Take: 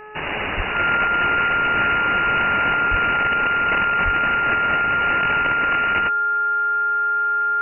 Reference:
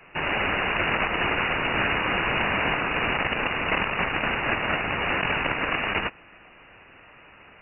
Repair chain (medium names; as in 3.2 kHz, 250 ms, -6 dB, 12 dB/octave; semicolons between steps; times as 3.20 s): de-hum 425.6 Hz, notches 4; band-stop 1.4 kHz, Q 30; 0.56–0.68 s: high-pass 140 Hz 24 dB/octave; 2.90–3.02 s: high-pass 140 Hz 24 dB/octave; 4.04–4.16 s: high-pass 140 Hz 24 dB/octave